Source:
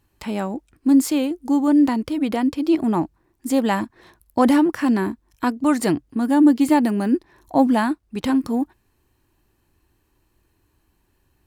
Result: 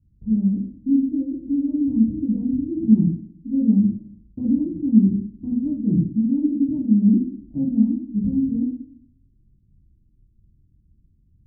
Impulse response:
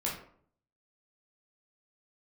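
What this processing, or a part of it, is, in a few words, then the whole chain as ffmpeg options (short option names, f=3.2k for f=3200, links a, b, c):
club heard from the street: -filter_complex "[0:a]alimiter=limit=-9.5dB:level=0:latency=1:release=264,lowpass=f=210:w=0.5412,lowpass=f=210:w=1.3066[a];[1:a]atrim=start_sample=2205[b];[a][b]afir=irnorm=-1:irlink=0,volume=3.5dB"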